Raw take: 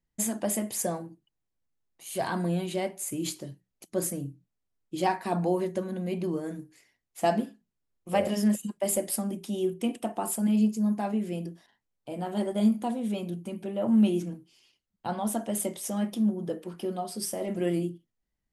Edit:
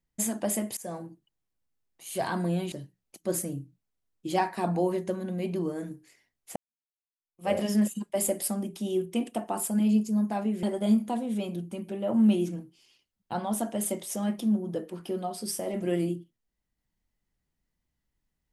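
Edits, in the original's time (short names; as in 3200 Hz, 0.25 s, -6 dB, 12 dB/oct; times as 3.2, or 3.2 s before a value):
0.77–1.05 fade in, from -23 dB
2.72–3.4 cut
7.24–8.2 fade in exponential
11.31–12.37 cut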